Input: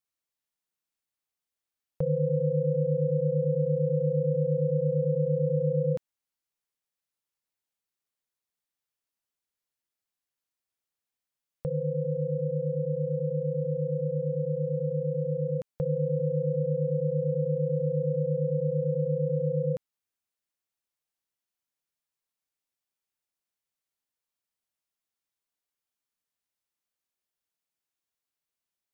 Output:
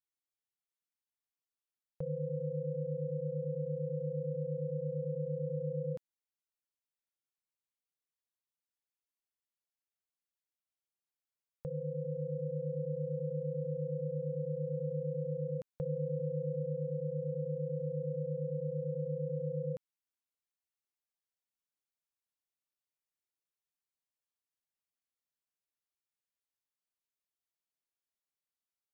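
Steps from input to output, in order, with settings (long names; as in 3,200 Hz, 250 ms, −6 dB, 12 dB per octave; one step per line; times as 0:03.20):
speech leveller within 5 dB 2 s
level −9 dB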